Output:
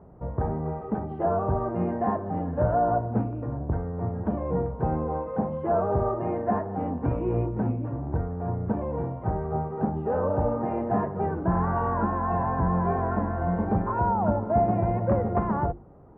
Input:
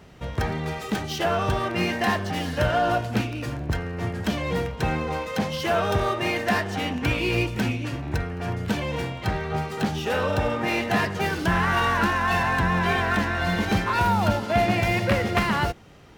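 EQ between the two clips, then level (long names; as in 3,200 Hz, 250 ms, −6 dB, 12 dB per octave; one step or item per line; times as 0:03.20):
low-pass filter 1,000 Hz 24 dB per octave
mains-hum notches 50/100/150/200/250/300/350 Hz
0.0 dB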